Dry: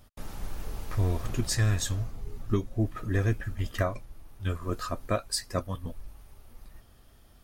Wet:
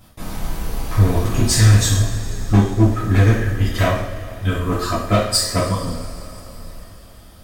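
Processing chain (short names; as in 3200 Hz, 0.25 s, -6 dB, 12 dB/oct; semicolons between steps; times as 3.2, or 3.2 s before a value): one-sided fold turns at -21 dBFS; two-slope reverb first 0.6 s, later 4.1 s, from -18 dB, DRR -7.5 dB; gain +5 dB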